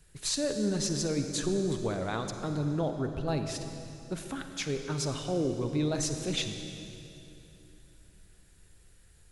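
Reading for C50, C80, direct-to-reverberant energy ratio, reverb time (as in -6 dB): 6.5 dB, 7.0 dB, 6.0 dB, 3.0 s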